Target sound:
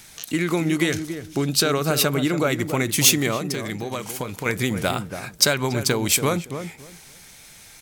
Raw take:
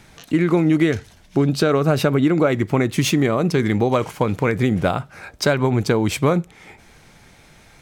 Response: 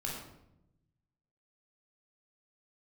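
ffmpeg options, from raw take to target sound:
-filter_complex "[0:a]asettb=1/sr,asplit=3[s0][s1][s2];[s0]atrim=end=3.374[s3];[s1]atrim=start=3.37:end=4.46,asetpts=PTS-STARTPTS,afade=t=in:d=0.004:c=qsin,afade=t=out:st=1.086:d=0.004:c=qsin,acompressor=threshold=0.0631:ratio=2.5[s4];[s2]atrim=start=4.456[s5];[s3][s4]acrossfade=d=0.004:c1=hsin:c2=qsin[s6];[s6][s5]acrossfade=d=0.004:c1=qsin:c2=hsin,crystalizer=i=7:c=0,asplit=2[s7][s8];[s8]adelay=282,lowpass=f=870:p=1,volume=0.422,asplit=2[s9][s10];[s10]adelay=282,lowpass=f=870:p=1,volume=0.22,asplit=2[s11][s12];[s12]adelay=282,lowpass=f=870:p=1,volume=0.22[s13];[s9][s11][s13]amix=inputs=3:normalize=0[s14];[s7][s14]amix=inputs=2:normalize=0,volume=0.473"

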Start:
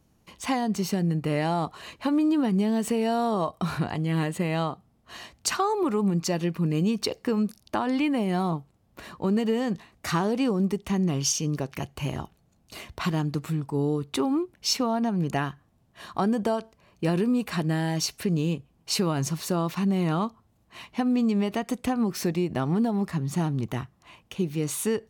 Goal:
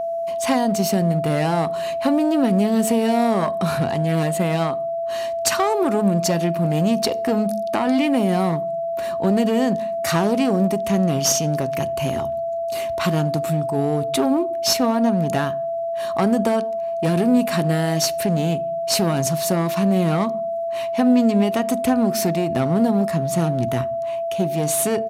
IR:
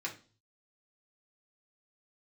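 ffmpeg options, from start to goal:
-filter_complex "[0:a]highshelf=f=8800:g=9.5,aeval=exprs='clip(val(0),-1,0.0562)':c=same,highpass=79,asplit=2[s0][s1];[1:a]atrim=start_sample=2205,asetrate=31311,aresample=44100,lowshelf=f=440:g=12[s2];[s1][s2]afir=irnorm=-1:irlink=0,volume=0.1[s3];[s0][s3]amix=inputs=2:normalize=0,aeval=exprs='val(0)+0.0447*sin(2*PI*670*n/s)':c=same,aresample=32000,aresample=44100,volume=1.78"

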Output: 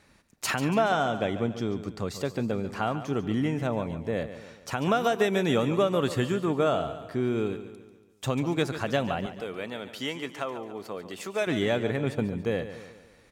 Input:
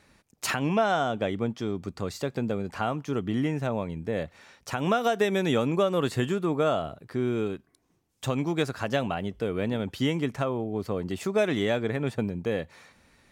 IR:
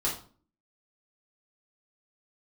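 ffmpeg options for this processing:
-filter_complex "[0:a]asettb=1/sr,asplit=3[s0][s1][s2];[s0]atrim=end=9.264[s3];[s1]atrim=start=9.26:end=11.47,asetpts=PTS-STARTPTS,afade=t=in:d=0.004:c=qsin,afade=t=out:st=2.206:d=0.004:c=qsin,highpass=f=780:p=1[s4];[s2]atrim=start=11.466[s5];[s3][s4]acrossfade=d=0.004:c1=hsin:c2=qsin[s6];[s6][s5]acrossfade=d=0.004:c1=qsin:c2=hsin,asplit=2[s7][s8];[s8]aecho=0:1:142|284|426|568|710:0.251|0.121|0.0579|0.0278|0.0133[s9];[s7][s9]amix=inputs=2:normalize=0"

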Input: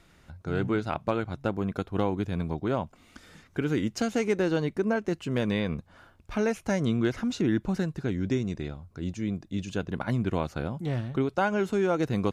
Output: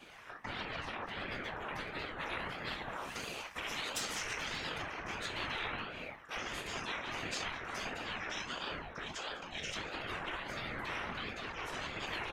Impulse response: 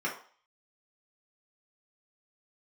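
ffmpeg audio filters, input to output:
-filter_complex "[0:a]highpass=680,alimiter=limit=0.0668:level=0:latency=1:release=364,asettb=1/sr,asplit=3[s0][s1][s2];[s0]atrim=end=2.494[s3];[s1]atrim=start=2.49:end=4.76,asetpts=PTS-STARTPTS,afade=t=in:d=0.004:c=qsin,afade=t=out:st=2.266:d=0.004:c=qsin,highshelf=f=3400:g=10[s4];[s2]atrim=start=4.756[s5];[s3][s4]acrossfade=d=0.004:c1=hsin:c2=qsin[s6];[s6][s5]acrossfade=d=0.004:c1=qsin:c2=hsin,asplit=2[s7][s8];[s8]adelay=204,lowpass=f=2900:p=1,volume=0.237,asplit=2[s9][s10];[s10]adelay=204,lowpass=f=2900:p=1,volume=0.28,asplit=2[s11][s12];[s12]adelay=204,lowpass=f=2900:p=1,volume=0.28[s13];[s7][s9][s11][s13]amix=inputs=4:normalize=0[s14];[1:a]atrim=start_sample=2205,atrim=end_sample=4410[s15];[s14][s15]afir=irnorm=-1:irlink=0,asoftclip=type=tanh:threshold=0.119,acompressor=threshold=0.0282:ratio=4,afftfilt=real='re*lt(hypot(re,im),0.0398)':imag='im*lt(hypot(re,im),0.0398)':win_size=1024:overlap=0.75,afftfilt=real='hypot(re,im)*cos(2*PI*random(0))':imag='hypot(re,im)*sin(2*PI*random(1))':win_size=512:overlap=0.75,aeval=exprs='val(0)*sin(2*PI*630*n/s+630*0.75/1.5*sin(2*PI*1.5*n/s))':c=same,volume=3.98"

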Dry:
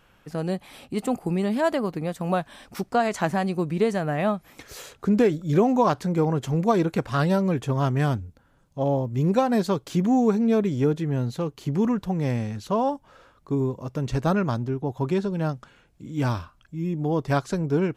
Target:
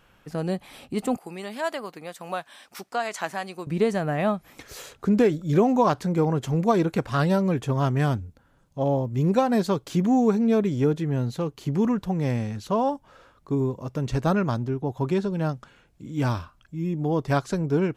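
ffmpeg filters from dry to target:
-filter_complex "[0:a]asettb=1/sr,asplit=3[s0][s1][s2];[s0]atrim=end=1.174[s3];[s1]atrim=start=1.17:end=3.67,asetpts=PTS-STARTPTS,afade=t=in:d=0.004:c=qsin,afade=t=out:st=2.496:d=0.004:c=qsin,highpass=f=1100:p=1[s4];[s2]atrim=start=3.666[s5];[s3][s4]acrossfade=d=0.004:c1=hsin:c2=qsin[s6];[s6][s5]acrossfade=d=0.004:c1=qsin:c2=hsin"

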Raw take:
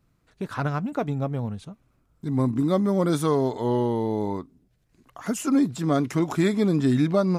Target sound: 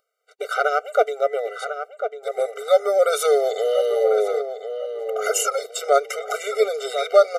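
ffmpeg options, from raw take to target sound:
-filter_complex "[0:a]asettb=1/sr,asplit=3[s0][s1][s2];[s0]atrim=end=1.234[s3];[s1]atrim=start=1.23:end=1.68,asetpts=PTS-STARTPTS,afade=t=in:d=0.004:c=qsin,afade=t=out:st=0.446:d=0.004:c=qsin,aeval=exprs='val(0)+0.00158*sin(2*PI*2000*n/s)':c=same[s4];[s2]atrim=start=1.676[s5];[s3][s4]acrossfade=d=0.004:c1=hsin:c2=qsin[s6];[s6][s5]acrossfade=d=0.004:c1=qsin:c2=hsin,agate=range=0.00126:threshold=0.00158:ratio=16:detection=peak,asplit=2[s7][s8];[s8]alimiter=limit=0.0944:level=0:latency=1:release=75,volume=1.19[s9];[s7][s9]amix=inputs=2:normalize=0,acompressor=mode=upward:threshold=0.0112:ratio=2.5,asettb=1/sr,asplit=3[s10][s11][s12];[s10]atrim=end=3.224[s13];[s11]atrim=start=3.22:end=4.04,asetpts=PTS-STARTPTS,afade=t=in:d=0.004:c=qsin,afade=t=out:st=0.816:d=0.004:c=qsin,tiltshelf=f=1200:g=-4[s14];[s12]atrim=start=4.036[s15];[s13][s14]acrossfade=d=0.004:c1=hsin:c2=qsin[s16];[s16][s15]acrossfade=d=0.004:c1=qsin:c2=hsin,asettb=1/sr,asplit=3[s17][s18][s19];[s17]atrim=end=5.984[s20];[s18]atrim=start=5.98:end=6.55,asetpts=PTS-STARTPTS,afade=t=in:d=0.004:c=qsin,afade=t=out:st=0.566:d=0.004:c=qsin,acompressor=threshold=0.0794:ratio=4[s21];[s19]atrim=start=6.546[s22];[s20][s21]acrossfade=d=0.004:c1=hsin:c2=qsin[s23];[s23][s22]acrossfade=d=0.004:c1=qsin:c2=hsin,asplit=2[s24][s25];[s25]adelay=1047,lowpass=f=2200:p=1,volume=0.398,asplit=2[s26][s27];[s27]adelay=1047,lowpass=f=2200:p=1,volume=0.27,asplit=2[s28][s29];[s29]adelay=1047,lowpass=f=2200:p=1,volume=0.27[s30];[s24][s26][s28][s30]amix=inputs=4:normalize=0,afftfilt=real='re*eq(mod(floor(b*sr/1024/390),2),1)':imag='im*eq(mod(floor(b*sr/1024/390),2),1)':win_size=1024:overlap=0.75,volume=2.24"

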